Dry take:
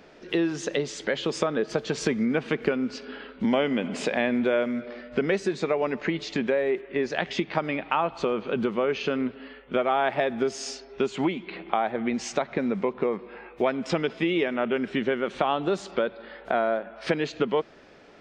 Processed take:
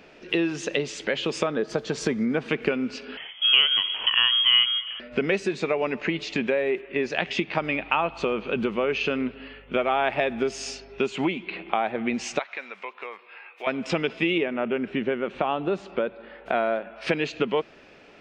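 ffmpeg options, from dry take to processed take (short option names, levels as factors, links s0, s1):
-filter_complex "[0:a]asettb=1/sr,asplit=3[s0][s1][s2];[s0]atrim=end=1.514[s3];[s1]atrim=start=1.51:end=2.49,asetpts=PTS-STARTPTS,afade=t=in:d=0.004:c=qsin,afade=t=out:st=0.976:d=0.004:c=qsin,equalizer=f=2600:w=2.7:g=-9.5[s4];[s2]atrim=start=2.486[s5];[s3][s4]acrossfade=d=0.004:c1=hsin:c2=qsin[s6];[s6][s5]acrossfade=d=0.004:c1=qsin:c2=hsin,asettb=1/sr,asplit=3[s7][s8][s9];[s7]atrim=end=3.174[s10];[s8]atrim=start=3.17:end=5,asetpts=PTS-STARTPTS,afade=t=in:d=0.004:c=qsin,afade=t=out:st=1.826:d=0.004:c=qsin,lowpass=f=3000:t=q:w=0.5098,lowpass=f=3000:t=q:w=0.6013,lowpass=f=3000:t=q:w=0.9,lowpass=f=3000:t=q:w=2.563,afreqshift=-3500[s11];[s9]atrim=start=4.996[s12];[s10][s11]acrossfade=d=0.004:c1=hsin:c2=qsin[s13];[s13][s12]acrossfade=d=0.004:c1=qsin:c2=hsin,asettb=1/sr,asplit=3[s14][s15][s16];[s14]atrim=end=7.584[s17];[s15]atrim=start=7.58:end=10.99,asetpts=PTS-STARTPTS,afade=t=in:d=0.004:c=qsin,afade=t=out:st=3.406:d=0.004:c=qsin,aeval=exprs='val(0)+0.002*(sin(2*PI*50*n/s)+sin(2*PI*2*50*n/s)/2+sin(2*PI*3*50*n/s)/3+sin(2*PI*4*50*n/s)/4+sin(2*PI*5*50*n/s)/5)':c=same[s18];[s16]atrim=start=10.986[s19];[s17][s18]acrossfade=d=0.004:c1=hsin:c2=qsin[s20];[s20][s19]acrossfade=d=0.004:c1=qsin:c2=hsin,asettb=1/sr,asplit=3[s21][s22][s23];[s21]atrim=end=12.394[s24];[s22]atrim=start=12.39:end=13.67,asetpts=PTS-STARTPTS,afade=t=in:d=0.004:c=qsin,afade=t=out:st=1.276:d=0.004:c=qsin,highpass=1100[s25];[s23]atrim=start=13.666[s26];[s24][s25]acrossfade=d=0.004:c1=hsin:c2=qsin[s27];[s27][s26]acrossfade=d=0.004:c1=qsin:c2=hsin,asettb=1/sr,asplit=3[s28][s29][s30];[s28]atrim=end=14.384[s31];[s29]atrim=start=14.38:end=16.46,asetpts=PTS-STARTPTS,afade=t=in:d=0.004:c=qsin,afade=t=out:st=2.076:d=0.004:c=qsin,lowpass=f=1500:p=1[s32];[s30]atrim=start=16.456[s33];[s31][s32]acrossfade=d=0.004:c1=hsin:c2=qsin[s34];[s34][s33]acrossfade=d=0.004:c1=qsin:c2=hsin,equalizer=f=2600:t=o:w=0.41:g=8.5"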